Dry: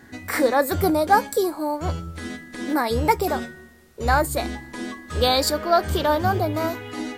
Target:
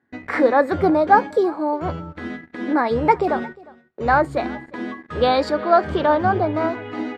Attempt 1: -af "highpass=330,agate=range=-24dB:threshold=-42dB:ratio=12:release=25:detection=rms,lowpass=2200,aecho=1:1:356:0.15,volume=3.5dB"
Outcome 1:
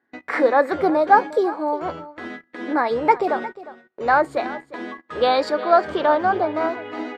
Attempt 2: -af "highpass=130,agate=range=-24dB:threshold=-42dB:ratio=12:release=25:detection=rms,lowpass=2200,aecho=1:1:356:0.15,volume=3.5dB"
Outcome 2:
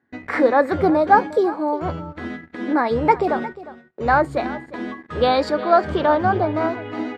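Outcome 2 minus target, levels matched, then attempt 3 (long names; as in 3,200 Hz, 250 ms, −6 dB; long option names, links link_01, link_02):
echo-to-direct +6.5 dB
-af "highpass=130,agate=range=-24dB:threshold=-42dB:ratio=12:release=25:detection=rms,lowpass=2200,aecho=1:1:356:0.0708,volume=3.5dB"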